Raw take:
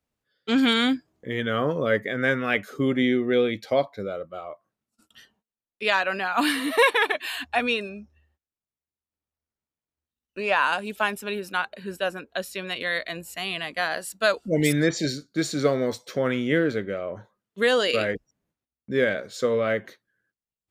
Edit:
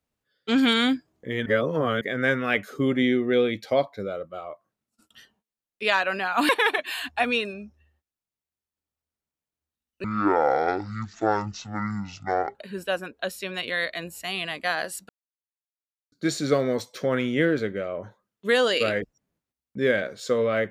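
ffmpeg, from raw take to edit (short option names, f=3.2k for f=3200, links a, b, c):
-filter_complex "[0:a]asplit=8[a][b][c][d][e][f][g][h];[a]atrim=end=1.462[i];[b]atrim=start=1.458:end=2.012,asetpts=PTS-STARTPTS,areverse[j];[c]atrim=start=2.008:end=6.492[k];[d]atrim=start=6.848:end=10.404[l];[e]atrim=start=10.4:end=11.68,asetpts=PTS-STARTPTS,asetrate=22491,aresample=44100,atrim=end_sample=110682,asetpts=PTS-STARTPTS[m];[f]atrim=start=11.676:end=14.22,asetpts=PTS-STARTPTS,afade=t=out:st=2.54:d=0.004:c=hsin[n];[g]atrim=start=14.22:end=15.25,asetpts=PTS-STARTPTS,volume=0[o];[h]atrim=start=15.25,asetpts=PTS-STARTPTS,afade=t=in:d=0.004:c=hsin[p];[i][j]acrossfade=d=0.004:c1=hsin:c2=hsin[q];[q][k]acrossfade=d=0.004:c1=hsin:c2=hsin[r];[r][l]acrossfade=d=0.004:c1=hsin:c2=hsin[s];[s][m]acrossfade=d=0.004:c1=hsin:c2=hsin[t];[n][o][p]concat=n=3:v=0:a=1[u];[t][u]acrossfade=d=0.004:c1=hsin:c2=hsin"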